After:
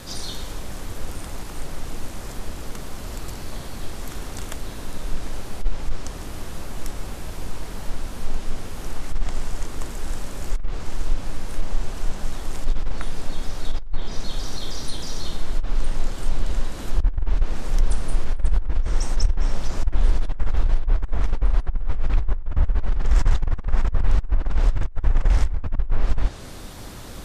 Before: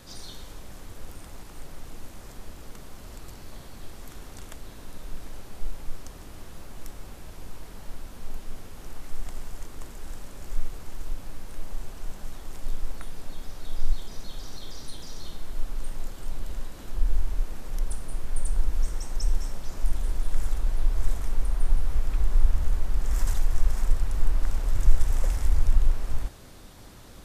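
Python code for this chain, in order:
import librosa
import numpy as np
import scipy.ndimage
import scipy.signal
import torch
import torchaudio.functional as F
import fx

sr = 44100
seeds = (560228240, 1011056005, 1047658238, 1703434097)

y = fx.env_lowpass_down(x, sr, base_hz=2200.0, full_db=-13.5)
y = fx.over_compress(y, sr, threshold_db=-21.0, ratio=-0.5)
y = F.gain(torch.from_numpy(y), 7.0).numpy()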